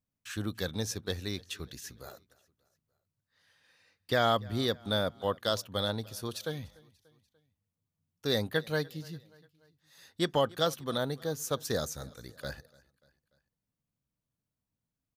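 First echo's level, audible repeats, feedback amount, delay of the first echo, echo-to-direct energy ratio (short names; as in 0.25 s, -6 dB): -24.0 dB, 2, 52%, 0.293 s, -22.5 dB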